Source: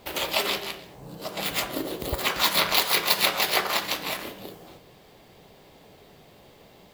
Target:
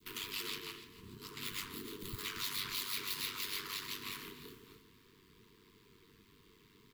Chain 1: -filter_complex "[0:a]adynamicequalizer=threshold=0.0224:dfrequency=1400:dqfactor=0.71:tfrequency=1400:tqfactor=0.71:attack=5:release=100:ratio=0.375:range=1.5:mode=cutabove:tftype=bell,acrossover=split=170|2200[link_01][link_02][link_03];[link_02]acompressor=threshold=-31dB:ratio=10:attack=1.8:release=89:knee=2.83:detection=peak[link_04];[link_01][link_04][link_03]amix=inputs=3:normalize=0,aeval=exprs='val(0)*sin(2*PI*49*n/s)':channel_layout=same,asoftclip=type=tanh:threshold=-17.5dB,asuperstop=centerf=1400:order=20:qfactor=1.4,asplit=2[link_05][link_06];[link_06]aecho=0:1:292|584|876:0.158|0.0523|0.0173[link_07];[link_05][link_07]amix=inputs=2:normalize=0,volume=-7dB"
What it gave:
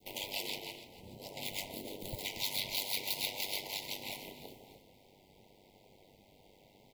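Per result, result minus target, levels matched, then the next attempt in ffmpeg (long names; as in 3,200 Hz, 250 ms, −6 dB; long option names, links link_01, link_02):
soft clipping: distortion −7 dB; 500 Hz band +3.5 dB
-filter_complex "[0:a]adynamicequalizer=threshold=0.0224:dfrequency=1400:dqfactor=0.71:tfrequency=1400:tqfactor=0.71:attack=5:release=100:ratio=0.375:range=1.5:mode=cutabove:tftype=bell,acrossover=split=170|2200[link_01][link_02][link_03];[link_02]acompressor=threshold=-31dB:ratio=10:attack=1.8:release=89:knee=2.83:detection=peak[link_04];[link_01][link_04][link_03]amix=inputs=3:normalize=0,aeval=exprs='val(0)*sin(2*PI*49*n/s)':channel_layout=same,asoftclip=type=tanh:threshold=-25.5dB,asuperstop=centerf=1400:order=20:qfactor=1.4,asplit=2[link_05][link_06];[link_06]aecho=0:1:292|584|876:0.158|0.0523|0.0173[link_07];[link_05][link_07]amix=inputs=2:normalize=0,volume=-7dB"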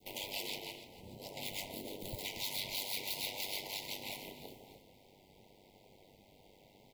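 500 Hz band +5.0 dB
-filter_complex "[0:a]adynamicequalizer=threshold=0.0224:dfrequency=1400:dqfactor=0.71:tfrequency=1400:tqfactor=0.71:attack=5:release=100:ratio=0.375:range=1.5:mode=cutabove:tftype=bell,acrossover=split=170|2200[link_01][link_02][link_03];[link_02]acompressor=threshold=-31dB:ratio=10:attack=1.8:release=89:knee=2.83:detection=peak[link_04];[link_01][link_04][link_03]amix=inputs=3:normalize=0,aeval=exprs='val(0)*sin(2*PI*49*n/s)':channel_layout=same,asoftclip=type=tanh:threshold=-25.5dB,asuperstop=centerf=660:order=20:qfactor=1.4,asplit=2[link_05][link_06];[link_06]aecho=0:1:292|584|876:0.158|0.0523|0.0173[link_07];[link_05][link_07]amix=inputs=2:normalize=0,volume=-7dB"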